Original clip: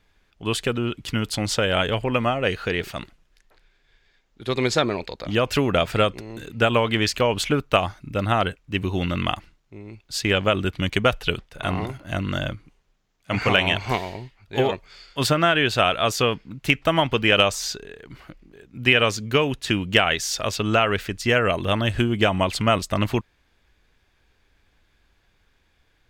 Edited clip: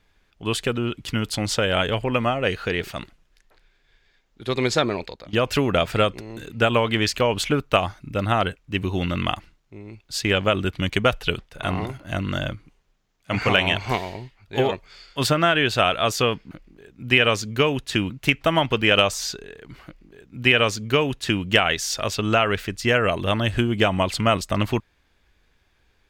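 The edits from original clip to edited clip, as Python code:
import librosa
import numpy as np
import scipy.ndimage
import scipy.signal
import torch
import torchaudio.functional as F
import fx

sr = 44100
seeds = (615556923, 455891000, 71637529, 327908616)

y = fx.edit(x, sr, fx.fade_out_to(start_s=5.02, length_s=0.31, floor_db=-18.0),
    fx.duplicate(start_s=18.26, length_s=1.59, to_s=16.51), tone=tone)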